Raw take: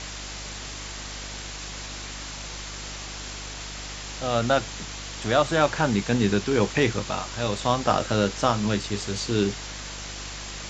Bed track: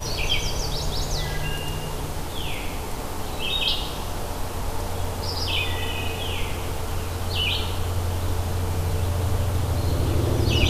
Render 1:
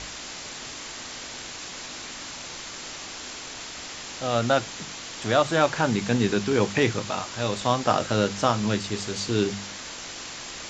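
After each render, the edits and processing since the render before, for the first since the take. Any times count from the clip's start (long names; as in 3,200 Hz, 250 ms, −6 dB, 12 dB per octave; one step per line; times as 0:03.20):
hum removal 50 Hz, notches 4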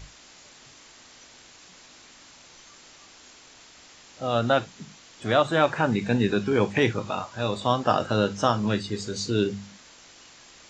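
noise reduction from a noise print 13 dB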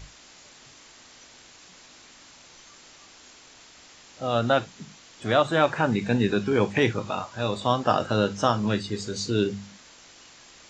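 no processing that can be heard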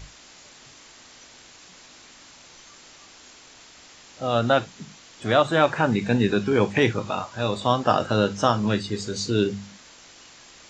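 level +2 dB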